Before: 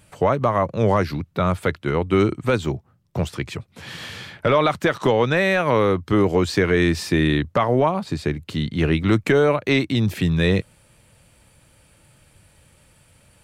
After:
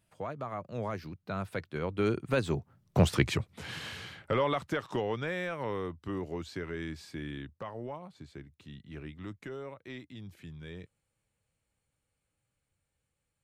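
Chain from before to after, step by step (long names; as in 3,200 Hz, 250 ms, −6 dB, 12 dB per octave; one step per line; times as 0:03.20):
source passing by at 0:03.18, 22 m/s, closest 6.2 metres
level +1.5 dB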